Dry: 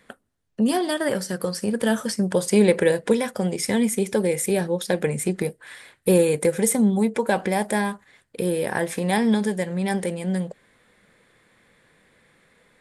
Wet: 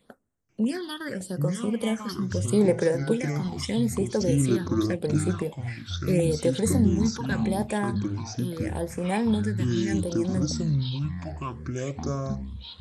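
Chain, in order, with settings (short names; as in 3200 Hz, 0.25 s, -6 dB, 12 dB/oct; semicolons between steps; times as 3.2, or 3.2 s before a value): phaser stages 6, 0.8 Hz, lowest notch 580–4200 Hz; echoes that change speed 0.49 s, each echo -7 st, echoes 2; gain -5 dB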